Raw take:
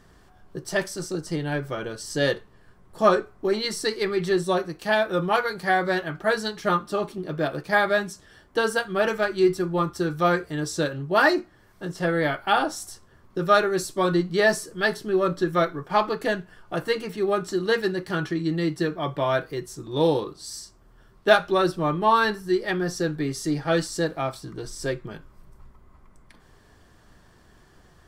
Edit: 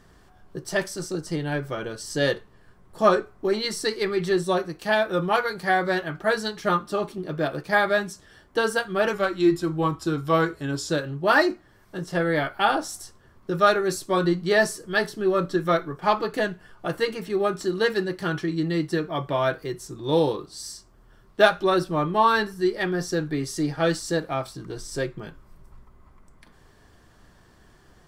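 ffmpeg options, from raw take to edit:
-filter_complex "[0:a]asplit=3[a][b][c];[a]atrim=end=9.134[d];[b]atrim=start=9.13:end=10.77,asetpts=PTS-STARTPTS,asetrate=41013,aresample=44100[e];[c]atrim=start=10.766[f];[d][e]acrossfade=d=0.004:c1=hsin:c2=hsin[g];[g][f]acrossfade=d=0.004:c1=hsin:c2=hsin"

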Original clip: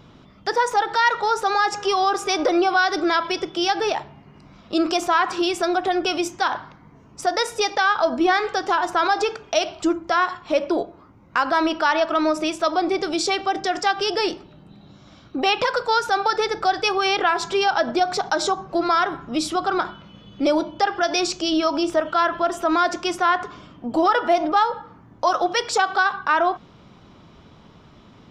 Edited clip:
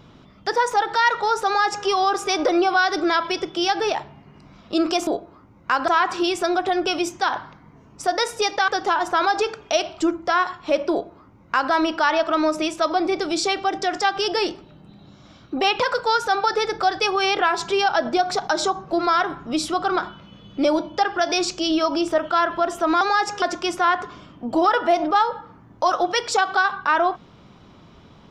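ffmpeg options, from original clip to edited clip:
-filter_complex "[0:a]asplit=6[a][b][c][d][e][f];[a]atrim=end=5.072[g];[b]atrim=start=10.728:end=11.542[h];[c]atrim=start=5.068:end=7.872[i];[d]atrim=start=8.498:end=22.832[j];[e]atrim=start=1.458:end=1.872[k];[f]atrim=start=22.828[l];[g][h]acrossfade=d=0.004:c1=hsin:c2=hsin[m];[m][i]acrossfade=d=0.004:c1=hsin:c2=hsin[n];[n][j]acrossfade=d=0.004:c1=hsin:c2=hsin[o];[o][k]acrossfade=d=0.004:c1=hsin:c2=hsin[p];[p][l]acrossfade=d=0.004:c1=hsin:c2=hsin"

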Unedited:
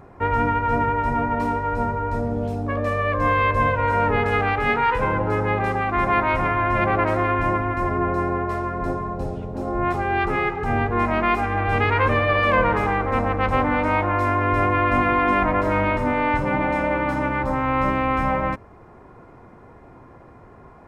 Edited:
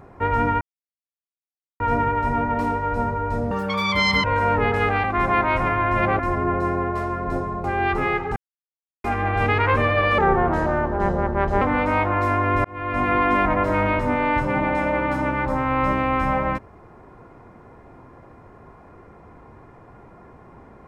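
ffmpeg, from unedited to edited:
-filter_complex "[0:a]asplit=12[a][b][c][d][e][f][g][h][i][j][k][l];[a]atrim=end=0.61,asetpts=PTS-STARTPTS,afade=t=out:st=0.606:d=0.004:c=hsin,apad=pad_dur=1.19[m];[b]atrim=start=0.61:end=2.324,asetpts=PTS-STARTPTS,afade=t=in:d=0.004:c=hsin[n];[c]atrim=start=2.32:end=3.76,asetpts=PTS-STARTPTS,asetrate=86877,aresample=44100[o];[d]atrim=start=3.756:end=4.562[p];[e]atrim=start=5.828:end=6.982[q];[f]atrim=start=7.728:end=9.182[r];[g]atrim=start=9.958:end=10.68,asetpts=PTS-STARTPTS,afade=t=out:st=0.718:d=0.004:c=hsin[s];[h]atrim=start=10.68:end=11.36,asetpts=PTS-STARTPTS,volume=0[t];[i]atrim=start=11.36:end=12.504,asetpts=PTS-STARTPTS,afade=t=in:d=0.004:c=hsin[u];[j]atrim=start=12.5:end=13.59,asetpts=PTS-STARTPTS,asetrate=33516,aresample=44100[v];[k]atrim=start=13.586:end=14.62,asetpts=PTS-STARTPTS,afade=t=out:st=1.03:d=0.004:c=hsin[w];[l]atrim=start=14.62,asetpts=PTS-STARTPTS,afade=t=in:d=0.51[x];[m][n]concat=n=2:v=0:a=1[y];[y][o]acrossfade=d=0.004:c1=hsin:c2=hsin[z];[z][p]acrossfade=d=0.004:c1=hsin:c2=hsin[aa];[aa][q]acrossfade=d=0.004:c1=hsin:c2=hsin[ab];[ab][r]acrossfade=d=0.004:c1=hsin:c2=hsin[ac];[s][t][u]concat=n=3:v=0:a=1[ad];[ac][ad]acrossfade=d=0.004:c1=hsin:c2=hsin[ae];[ae][v]acrossfade=d=0.004:c1=hsin:c2=hsin[af];[w][x]concat=n=2:v=0:a=1[ag];[af][ag]acrossfade=d=0.004:c1=hsin:c2=hsin"

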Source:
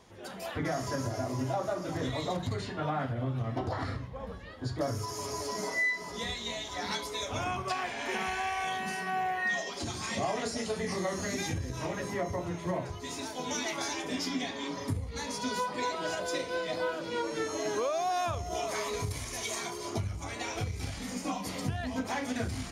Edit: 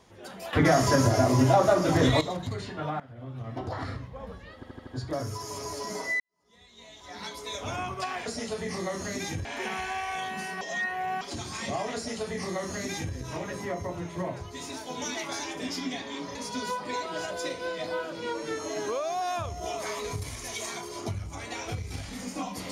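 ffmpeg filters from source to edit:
-filter_complex "[0:a]asplit=14[a][b][c][d][e][f][g][h][i][j][k][l][m][n];[a]atrim=end=0.532[o];[b]atrim=start=0.528:end=2.212,asetpts=PTS-STARTPTS,volume=11.5dB[p];[c]atrim=start=2.208:end=3,asetpts=PTS-STARTPTS,afade=t=out:st=0.788:d=0.004:c=hsin:silence=0.105925[q];[d]atrim=start=3:end=4.632,asetpts=PTS-STARTPTS,afade=t=in:d=0.76:silence=0.105925[r];[e]atrim=start=4.548:end=4.632[s];[f]atrim=start=4.548:end=4.632[t];[g]atrim=start=4.548:end=4.632[u];[h]atrim=start=4.548:end=5.88,asetpts=PTS-STARTPTS,afade=t=out:st=1.328:d=0.004:c=hsin[v];[i]atrim=start=5.88:end=7.942,asetpts=PTS-STARTPTS,afade=t=in:d=1.38:c=qua[w];[j]atrim=start=10.438:end=11.632[x];[k]atrim=start=7.938:end=9.102[y];[l]atrim=start=9.098:end=9.702,asetpts=PTS-STARTPTS,areverse[z];[m]atrim=start=9.698:end=14.842[aa];[n]atrim=start=15.238[ab];[o][p]acrossfade=d=0.004:c1=hsin:c2=hsin[ac];[q][r]concat=n=2:v=0:a=1[ad];[ac][ad]acrossfade=d=0.004:c1=hsin:c2=hsin[ae];[ae][s]acrossfade=d=0.004:c1=hsin:c2=hsin[af];[af][t]acrossfade=d=0.004:c1=hsin:c2=hsin[ag];[ag][u]acrossfade=d=0.004:c1=hsin:c2=hsin[ah];[v][w]concat=n=2:v=0:a=1[ai];[ah][ai]acrossfade=d=0.004:c1=hsin:c2=hsin[aj];[aj][x]acrossfade=d=0.004:c1=hsin:c2=hsin[ak];[ak][y]acrossfade=d=0.004:c1=hsin:c2=hsin[al];[al][z]acrossfade=d=0.004:c1=hsin:c2=hsin[am];[am][aa]acrossfade=d=0.004:c1=hsin:c2=hsin[an];[an][ab]acrossfade=d=0.004:c1=hsin:c2=hsin"

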